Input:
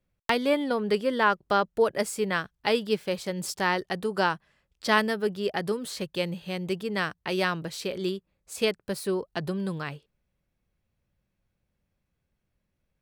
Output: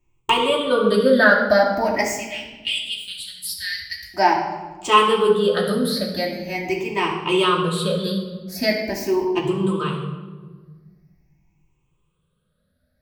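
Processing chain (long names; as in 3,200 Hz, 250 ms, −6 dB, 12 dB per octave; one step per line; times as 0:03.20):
rippled gain that drifts along the octave scale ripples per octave 0.7, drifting +0.43 Hz, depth 20 dB
0:02.04–0:04.14: inverse Chebyshev band-stop filter 210–1,100 Hz, stop band 50 dB
convolution reverb RT60 1.4 s, pre-delay 3 ms, DRR −3.5 dB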